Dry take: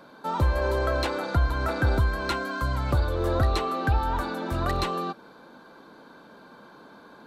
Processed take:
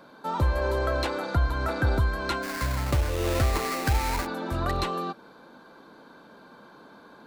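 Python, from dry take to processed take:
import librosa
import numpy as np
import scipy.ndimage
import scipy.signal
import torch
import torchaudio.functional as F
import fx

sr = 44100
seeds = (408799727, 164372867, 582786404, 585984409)

y = fx.sample_hold(x, sr, seeds[0], rate_hz=3200.0, jitter_pct=20, at=(2.42, 4.25), fade=0.02)
y = F.gain(torch.from_numpy(y), -1.0).numpy()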